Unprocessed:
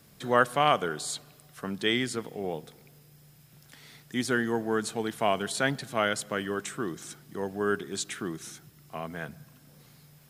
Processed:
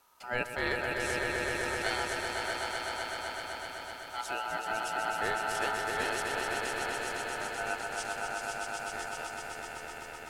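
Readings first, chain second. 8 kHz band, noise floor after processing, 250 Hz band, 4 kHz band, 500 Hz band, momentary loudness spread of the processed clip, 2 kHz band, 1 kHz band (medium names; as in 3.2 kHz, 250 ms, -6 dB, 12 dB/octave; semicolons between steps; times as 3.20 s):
-2.5 dB, -44 dBFS, -11.0 dB, -3.0 dB, -5.5 dB, 8 LU, +1.0 dB, -2.5 dB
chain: echo with a slow build-up 127 ms, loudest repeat 5, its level -5 dB; dynamic bell 1.2 kHz, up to -6 dB, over -38 dBFS, Q 1.9; ring modulator 1.1 kHz; trim -5.5 dB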